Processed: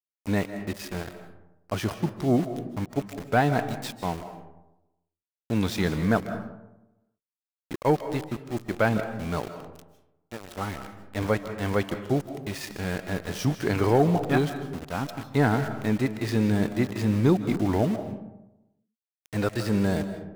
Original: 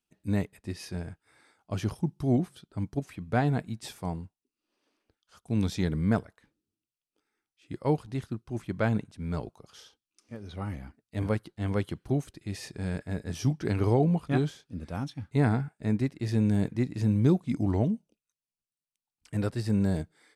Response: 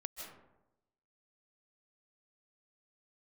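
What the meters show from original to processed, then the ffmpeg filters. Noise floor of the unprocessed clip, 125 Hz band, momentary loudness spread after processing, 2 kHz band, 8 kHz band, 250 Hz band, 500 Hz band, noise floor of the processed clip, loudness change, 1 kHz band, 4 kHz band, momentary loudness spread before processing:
under -85 dBFS, 0.0 dB, 13 LU, +8.5 dB, +5.5 dB, +2.5 dB, +6.0 dB, under -85 dBFS, +3.0 dB, +8.0 dB, +7.0 dB, 13 LU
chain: -filter_complex "[0:a]asplit=2[a][b];[b]highpass=f=720:p=1,volume=11dB,asoftclip=type=tanh:threshold=-12.5dB[c];[a][c]amix=inputs=2:normalize=0,lowpass=f=3.2k:p=1,volume=-6dB,aeval=exprs='val(0)*gte(abs(val(0)),0.0119)':c=same,asplit=2[d][e];[1:a]atrim=start_sample=2205[f];[e][f]afir=irnorm=-1:irlink=0,volume=0dB[g];[d][g]amix=inputs=2:normalize=0"

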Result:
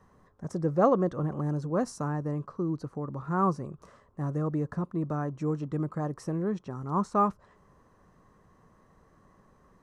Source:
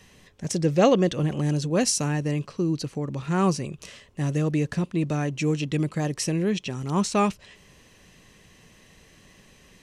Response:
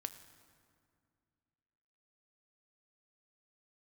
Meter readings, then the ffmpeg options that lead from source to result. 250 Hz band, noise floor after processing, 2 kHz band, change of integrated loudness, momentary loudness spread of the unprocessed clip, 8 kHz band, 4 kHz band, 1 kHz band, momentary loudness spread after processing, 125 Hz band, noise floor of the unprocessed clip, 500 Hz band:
-5.5 dB, -63 dBFS, -11.0 dB, -5.0 dB, 9 LU, -21.0 dB, under -20 dB, -0.5 dB, 11 LU, -6.0 dB, -55 dBFS, -4.5 dB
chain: -af "highshelf=f=1.8k:t=q:w=3:g=-14,volume=-6dB"

